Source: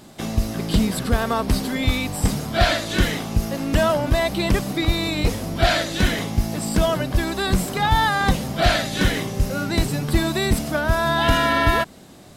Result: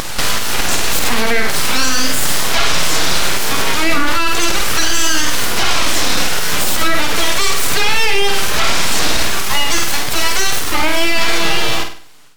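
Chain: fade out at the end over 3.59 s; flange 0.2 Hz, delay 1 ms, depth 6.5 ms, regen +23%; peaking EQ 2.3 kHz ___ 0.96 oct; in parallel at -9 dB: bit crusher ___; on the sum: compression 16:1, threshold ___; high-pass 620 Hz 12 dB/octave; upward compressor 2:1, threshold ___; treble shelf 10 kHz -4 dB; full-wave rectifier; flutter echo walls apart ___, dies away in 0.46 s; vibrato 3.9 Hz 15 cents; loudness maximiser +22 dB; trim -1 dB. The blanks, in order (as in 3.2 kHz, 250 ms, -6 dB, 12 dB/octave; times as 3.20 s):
+4 dB, 6-bit, -19 dBFS, -31 dBFS, 8.6 m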